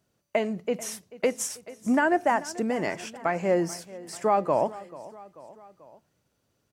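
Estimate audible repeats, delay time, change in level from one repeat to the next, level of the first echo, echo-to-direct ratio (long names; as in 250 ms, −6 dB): 3, 438 ms, −4.5 dB, −18.5 dB, −17.0 dB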